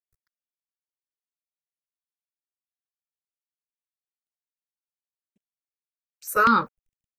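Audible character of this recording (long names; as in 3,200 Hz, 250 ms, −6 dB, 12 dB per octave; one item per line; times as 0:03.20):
a quantiser's noise floor 12 bits, dither none
chopped level 1.1 Hz, depth 60%, duty 40%
notches that jump at a steady rate 5.1 Hz 860–6,100 Hz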